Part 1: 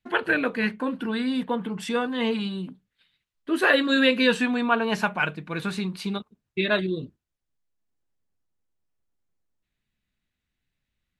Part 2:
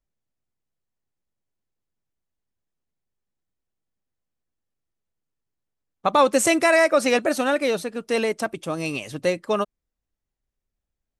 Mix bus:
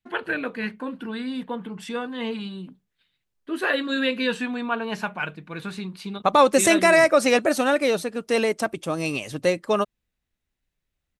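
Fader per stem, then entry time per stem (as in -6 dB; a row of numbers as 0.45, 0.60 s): -4.0, +1.0 dB; 0.00, 0.20 s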